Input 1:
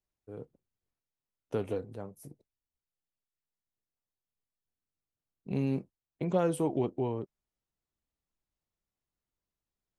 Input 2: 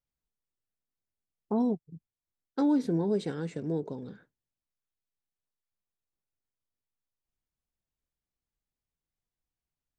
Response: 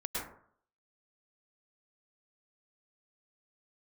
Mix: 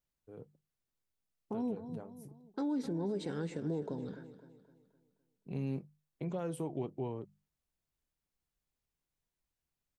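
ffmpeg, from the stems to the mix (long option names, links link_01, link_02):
-filter_complex "[0:a]equalizer=frequency=150:width_type=o:width=0.26:gain=7.5,bandreject=frequency=50:width_type=h:width=6,bandreject=frequency=100:width_type=h:width=6,bandreject=frequency=150:width_type=h:width=6,bandreject=frequency=200:width_type=h:width=6,volume=-6.5dB[link_01];[1:a]alimiter=level_in=0.5dB:limit=-24dB:level=0:latency=1:release=99,volume=-0.5dB,volume=0.5dB,asplit=3[link_02][link_03][link_04];[link_03]volume=-14.5dB[link_05];[link_04]apad=whole_len=440350[link_06];[link_01][link_06]sidechaincompress=threshold=-33dB:ratio=8:attack=34:release=333[link_07];[link_05]aecho=0:1:257|514|771|1028|1285|1542:1|0.42|0.176|0.0741|0.0311|0.0131[link_08];[link_07][link_02][link_08]amix=inputs=3:normalize=0,alimiter=level_in=4dB:limit=-24dB:level=0:latency=1:release=169,volume=-4dB"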